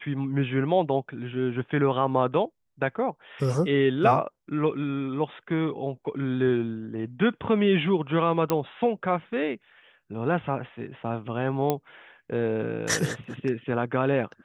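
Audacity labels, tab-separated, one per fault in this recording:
8.500000	8.500000	click −10 dBFS
11.700000	11.700000	click −11 dBFS

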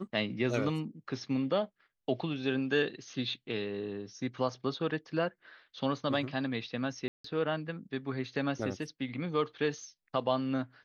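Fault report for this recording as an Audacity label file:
7.080000	7.240000	drop-out 164 ms

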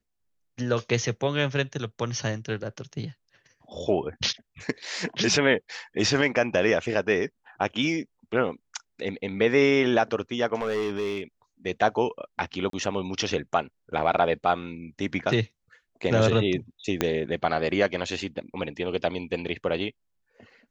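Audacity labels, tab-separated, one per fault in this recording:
10.610000	11.210000	clipping −23 dBFS
12.700000	12.730000	drop-out 33 ms
17.010000	17.010000	click −7 dBFS

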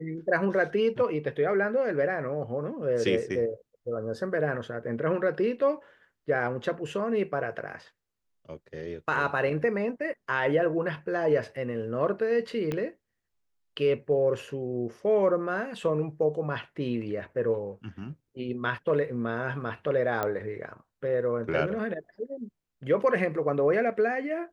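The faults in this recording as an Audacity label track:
12.720000	12.720000	click −18 dBFS
20.230000	20.230000	click −15 dBFS

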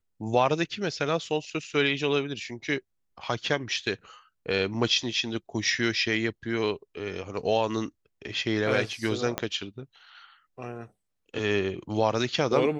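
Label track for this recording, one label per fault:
9.380000	9.380000	click −11 dBFS

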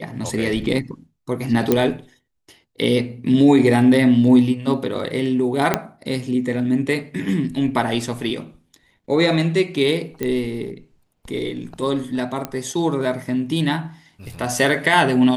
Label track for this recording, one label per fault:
1.720000	1.720000	click −3 dBFS
5.740000	5.740000	click −2 dBFS
10.230000	10.230000	click −11 dBFS
12.450000	12.450000	click −11 dBFS

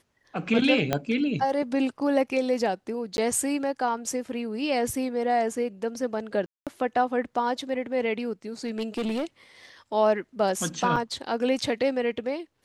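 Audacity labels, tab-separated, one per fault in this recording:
0.930000	0.930000	click −9 dBFS
3.170000	3.180000	drop-out 11 ms
6.460000	6.670000	drop-out 207 ms
8.640000	9.250000	clipping −24.5 dBFS
10.960000	10.960000	drop-out 3.1 ms

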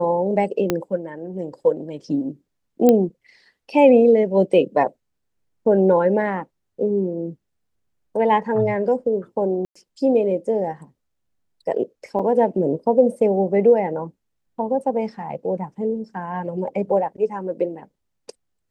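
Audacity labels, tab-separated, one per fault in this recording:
0.700000	0.700000	click −6 dBFS
2.890000	2.890000	click −4 dBFS
9.650000	9.760000	drop-out 105 ms
12.190000	12.200000	drop-out 5.7 ms

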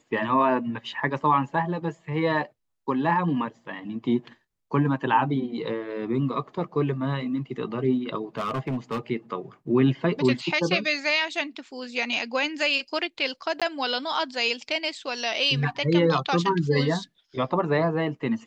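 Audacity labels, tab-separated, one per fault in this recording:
8.380000	9.000000	clipping −24 dBFS
13.600000	13.620000	drop-out 16 ms

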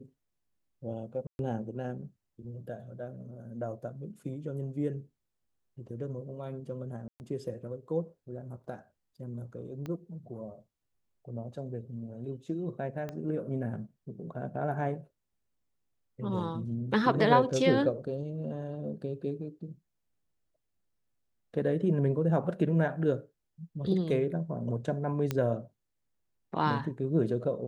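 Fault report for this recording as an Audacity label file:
1.270000	1.390000	drop-out 121 ms
7.080000	7.200000	drop-out 119 ms
9.860000	9.860000	click −26 dBFS
13.090000	13.090000	click −25 dBFS
25.310000	25.310000	click −16 dBFS

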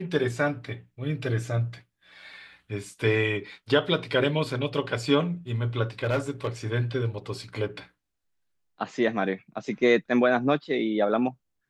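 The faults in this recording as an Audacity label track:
6.030000	6.470000	clipping −20.5 dBFS

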